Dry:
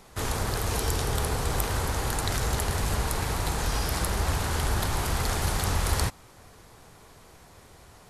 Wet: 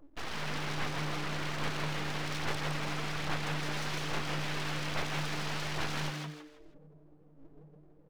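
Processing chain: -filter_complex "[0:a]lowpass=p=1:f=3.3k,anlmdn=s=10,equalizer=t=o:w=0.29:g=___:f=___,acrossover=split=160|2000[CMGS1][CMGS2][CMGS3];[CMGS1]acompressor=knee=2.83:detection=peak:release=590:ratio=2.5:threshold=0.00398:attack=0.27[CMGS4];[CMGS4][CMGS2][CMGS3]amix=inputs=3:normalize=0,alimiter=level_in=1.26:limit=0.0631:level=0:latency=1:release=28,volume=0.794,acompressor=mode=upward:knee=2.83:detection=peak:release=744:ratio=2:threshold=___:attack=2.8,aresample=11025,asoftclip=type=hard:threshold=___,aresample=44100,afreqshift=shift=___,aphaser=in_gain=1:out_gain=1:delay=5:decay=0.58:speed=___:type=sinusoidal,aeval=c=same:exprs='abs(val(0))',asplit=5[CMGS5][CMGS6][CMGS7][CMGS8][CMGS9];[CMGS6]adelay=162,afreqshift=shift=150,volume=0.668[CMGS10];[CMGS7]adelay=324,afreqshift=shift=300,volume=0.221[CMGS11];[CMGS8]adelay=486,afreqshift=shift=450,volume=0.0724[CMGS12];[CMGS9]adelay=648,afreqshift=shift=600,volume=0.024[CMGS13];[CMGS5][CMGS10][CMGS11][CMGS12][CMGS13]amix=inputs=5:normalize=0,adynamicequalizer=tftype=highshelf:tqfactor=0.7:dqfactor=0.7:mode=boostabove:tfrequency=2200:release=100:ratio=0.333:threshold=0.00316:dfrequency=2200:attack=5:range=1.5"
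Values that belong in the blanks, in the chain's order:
-9.5, 71, 0.00282, 0.0168, 130, 1.2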